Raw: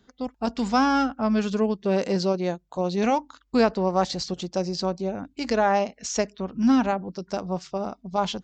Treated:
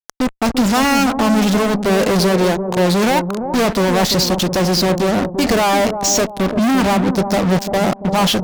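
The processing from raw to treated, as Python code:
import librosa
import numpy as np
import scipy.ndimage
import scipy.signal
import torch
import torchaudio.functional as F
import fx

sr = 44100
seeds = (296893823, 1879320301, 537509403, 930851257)

p1 = fx.fuzz(x, sr, gain_db=40.0, gate_db=-40.0)
y = p1 + fx.echo_bbd(p1, sr, ms=343, stages=2048, feedback_pct=41, wet_db=-7, dry=0)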